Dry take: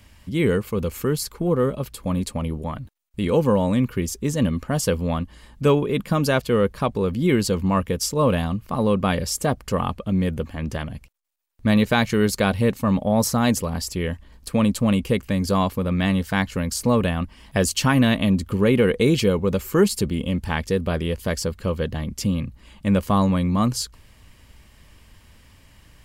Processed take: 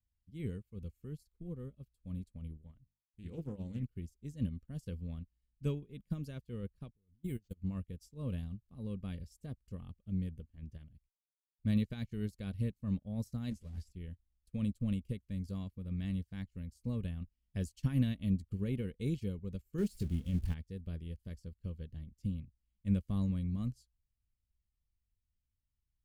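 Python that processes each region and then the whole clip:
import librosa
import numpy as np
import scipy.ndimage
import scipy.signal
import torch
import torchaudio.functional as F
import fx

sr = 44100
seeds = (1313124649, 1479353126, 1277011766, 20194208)

y = fx.chain(x, sr, fx.hum_notches(base_hz=50, count=9),
    fx.doppler_dist(depth_ms=0.28), at=(2.61, 3.83))
y = fx.chain(y, sr, fx.low_shelf(hz=70.0, db=8.5),
    fx.level_steps(step_db=18),
    fx.resample_bad(factor=4, down='none', up='hold'), at=(6.91, 7.62))
y = fx.chain(y, sr, fx.zero_step(step_db=-27.0),
    fx.lowpass(hz=11000.0, slope=12),
    fx.ensemble(), at=(13.5, 13.91))
y = fx.chain(y, sr, fx.zero_step(step_db=-26.5),
    fx.doubler(ms=23.0, db=-13.0), at=(19.78, 20.54))
y = fx.tone_stack(y, sr, knobs='10-0-1')
y = fx.upward_expand(y, sr, threshold_db=-51.0, expansion=2.5)
y = F.gain(torch.from_numpy(y), 5.0).numpy()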